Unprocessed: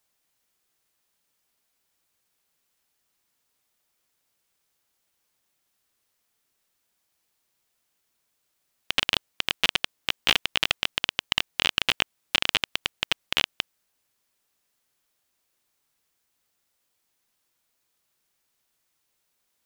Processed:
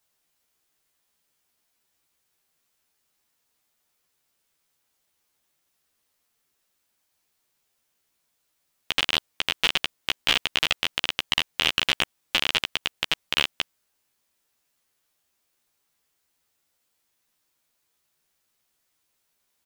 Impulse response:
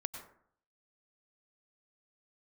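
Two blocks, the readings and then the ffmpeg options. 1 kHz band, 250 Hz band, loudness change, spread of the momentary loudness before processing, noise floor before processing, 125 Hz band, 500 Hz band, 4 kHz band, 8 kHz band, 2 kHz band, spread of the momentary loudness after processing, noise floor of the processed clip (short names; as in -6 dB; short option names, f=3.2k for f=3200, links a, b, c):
+0.5 dB, +0.5 dB, +1.0 dB, 6 LU, -76 dBFS, +1.0 dB, +1.0 dB, +1.0 dB, +0.5 dB, +1.0 dB, 6 LU, -75 dBFS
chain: -filter_complex "[0:a]asplit=2[a][b];[b]adelay=13,volume=-3dB[c];[a][c]amix=inputs=2:normalize=0,volume=-1dB"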